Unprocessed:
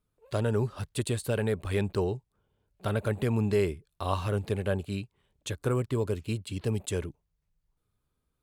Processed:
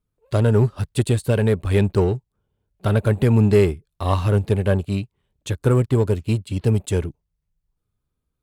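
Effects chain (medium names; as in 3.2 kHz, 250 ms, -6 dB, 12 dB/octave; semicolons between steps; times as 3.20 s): bass shelf 320 Hz +6 dB; in parallel at -6.5 dB: hard clipper -29.5 dBFS, distortion -6 dB; on the sum: upward expansion 1.5:1, over -46 dBFS; trim +7 dB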